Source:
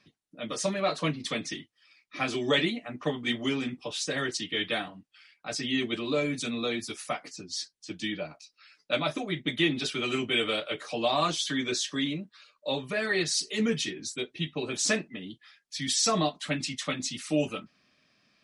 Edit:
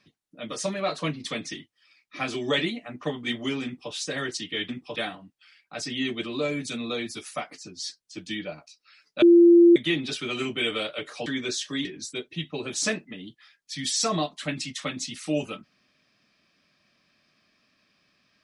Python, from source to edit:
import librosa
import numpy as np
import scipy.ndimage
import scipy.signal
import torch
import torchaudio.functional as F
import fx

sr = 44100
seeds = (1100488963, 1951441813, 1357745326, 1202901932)

y = fx.edit(x, sr, fx.duplicate(start_s=3.65, length_s=0.27, to_s=4.69),
    fx.bleep(start_s=8.95, length_s=0.54, hz=343.0, db=-10.5),
    fx.cut(start_s=10.99, length_s=0.5),
    fx.cut(start_s=12.08, length_s=1.8), tone=tone)